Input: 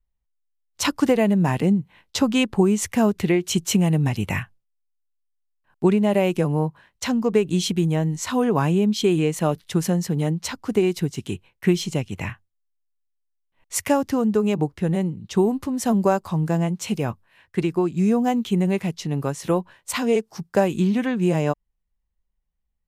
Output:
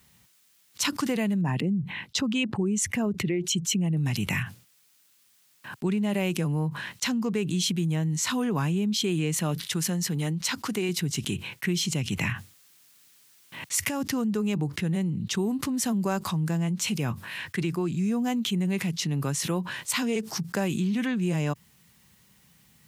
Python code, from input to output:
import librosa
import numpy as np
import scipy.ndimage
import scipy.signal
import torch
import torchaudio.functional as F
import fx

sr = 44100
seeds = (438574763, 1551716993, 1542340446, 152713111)

y = fx.envelope_sharpen(x, sr, power=1.5, at=(1.41, 3.97))
y = fx.low_shelf(y, sr, hz=370.0, db=-6.5, at=(9.68, 10.89))
y = fx.over_compress(y, sr, threshold_db=-25.0, ratio=-1.0, at=(12.03, 14.0), fade=0.02)
y = scipy.signal.sosfilt(scipy.signal.butter(4, 120.0, 'highpass', fs=sr, output='sos'), y)
y = fx.peak_eq(y, sr, hz=590.0, db=-11.0, octaves=2.1)
y = fx.env_flatten(y, sr, amount_pct=70)
y = F.gain(torch.from_numpy(y), -6.0).numpy()